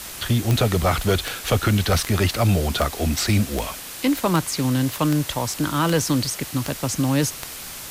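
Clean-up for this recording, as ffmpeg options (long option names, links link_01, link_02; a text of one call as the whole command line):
ffmpeg -i in.wav -af "adeclick=threshold=4,afwtdn=0.02" out.wav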